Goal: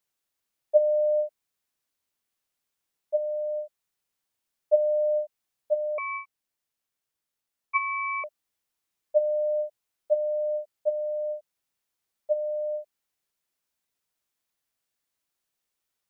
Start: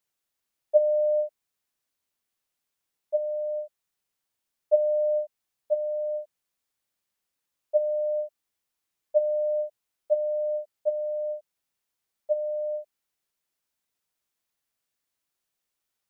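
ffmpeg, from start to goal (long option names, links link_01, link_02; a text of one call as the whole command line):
ffmpeg -i in.wav -filter_complex "[0:a]asettb=1/sr,asplit=3[link_01][link_02][link_03];[link_01]atrim=end=5.984[link_04];[link_02]atrim=start=5.98:end=8.24,asetpts=PTS-STARTPTS,afade=type=in:duration=0.004:curve=qsin,afade=type=out:start_time=2.256:duration=0.004:curve=qsin,aeval=exprs='val(0)*sin(2*PI*1700*n/s)':channel_layout=same[link_05];[link_03]atrim=start=8.236[link_06];[link_04][link_05]acrossfade=duration=0.004:curve1=hsin:curve2=qsin[link_07];[link_07][link_06]acrossfade=duration=0.004:curve1=qsin:curve2=hsin" out.wav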